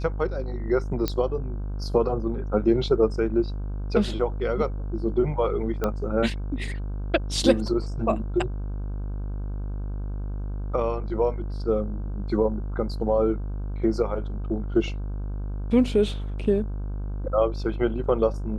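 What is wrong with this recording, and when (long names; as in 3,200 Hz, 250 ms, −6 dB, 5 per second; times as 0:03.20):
mains buzz 50 Hz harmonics 32 −30 dBFS
0:01.08: click −11 dBFS
0:05.84: click −13 dBFS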